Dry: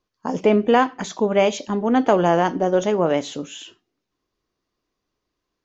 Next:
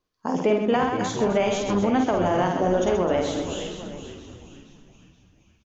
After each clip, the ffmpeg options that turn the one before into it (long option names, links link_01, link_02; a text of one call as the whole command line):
ffmpeg -i in.wav -filter_complex "[0:a]asplit=2[link_01][link_02];[link_02]aecho=0:1:50|130|258|462.8|790.5:0.631|0.398|0.251|0.158|0.1[link_03];[link_01][link_03]amix=inputs=2:normalize=0,alimiter=limit=-9.5dB:level=0:latency=1:release=318,asplit=2[link_04][link_05];[link_05]asplit=5[link_06][link_07][link_08][link_09][link_10];[link_06]adelay=472,afreqshift=-100,volume=-12dB[link_11];[link_07]adelay=944,afreqshift=-200,volume=-18.6dB[link_12];[link_08]adelay=1416,afreqshift=-300,volume=-25.1dB[link_13];[link_09]adelay=1888,afreqshift=-400,volume=-31.7dB[link_14];[link_10]adelay=2360,afreqshift=-500,volume=-38.2dB[link_15];[link_11][link_12][link_13][link_14][link_15]amix=inputs=5:normalize=0[link_16];[link_04][link_16]amix=inputs=2:normalize=0,volume=-2dB" out.wav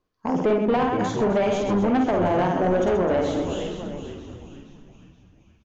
ffmpeg -i in.wav -af "highshelf=frequency=2600:gain=-10.5,asoftclip=type=tanh:threshold=-19dB,volume=4dB" out.wav